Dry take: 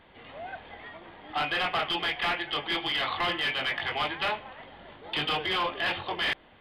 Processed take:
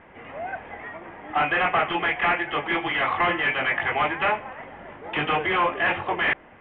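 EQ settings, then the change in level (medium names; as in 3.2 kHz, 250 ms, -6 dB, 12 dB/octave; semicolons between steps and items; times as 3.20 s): steep low-pass 2.5 kHz 36 dB/octave; bass shelf 73 Hz -6 dB; +7.5 dB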